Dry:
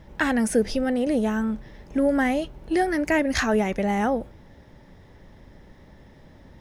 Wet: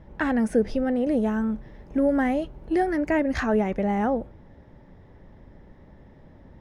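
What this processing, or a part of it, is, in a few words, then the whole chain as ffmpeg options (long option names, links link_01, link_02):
through cloth: -filter_complex "[0:a]asettb=1/sr,asplit=3[link_01][link_02][link_03];[link_01]atrim=end=1.044[link_04];[link_02]atrim=start=1.04:end=2.96,asetpts=PTS-STARTPTS,afade=type=in:duration=0.004:curve=qsin,afade=type=out:start_time=1.916:duration=0.004:curve=qsin,highshelf=frequency=5700:gain=5[link_05];[link_03]atrim=start=2.956[link_06];[link_04][link_05]acrossfade=duration=0.004:curve1=hsin:curve2=qsin[link_07];[link_07][link_06]acrossfade=duration=0.004:curve1=qsin:curve2=hsin,highshelf=frequency=2800:gain=-16"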